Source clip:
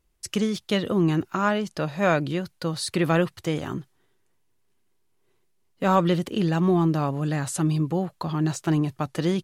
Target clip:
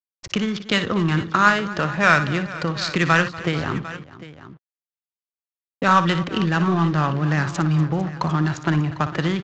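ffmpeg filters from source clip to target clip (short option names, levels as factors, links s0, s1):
-filter_complex "[0:a]adynamicequalizer=threshold=0.0112:dfrequency=1500:dqfactor=1.4:tfrequency=1500:tqfactor=1.4:attack=5:release=100:ratio=0.375:range=3:mode=boostabove:tftype=bell,acrossover=split=140|1100[s0][s1][s2];[s1]acompressor=threshold=0.0251:ratio=6[s3];[s0][s3][s2]amix=inputs=3:normalize=0,acrusher=bits=6:mix=0:aa=0.5,adynamicsmooth=sensitivity=5:basefreq=1300,asplit=2[s4][s5];[s5]aecho=0:1:59|241|450|750:0.266|0.126|0.126|0.15[s6];[s4][s6]amix=inputs=2:normalize=0,aresample=16000,aresample=44100,volume=2.51"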